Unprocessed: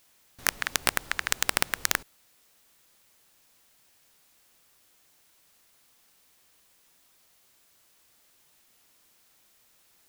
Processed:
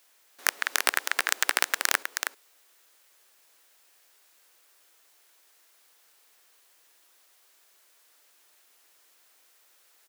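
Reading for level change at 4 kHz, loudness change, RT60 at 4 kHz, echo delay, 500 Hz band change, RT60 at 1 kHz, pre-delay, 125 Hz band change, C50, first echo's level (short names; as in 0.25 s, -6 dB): +1.5 dB, +1.0 dB, none, 0.317 s, +1.0 dB, none, none, under -25 dB, none, -5.5 dB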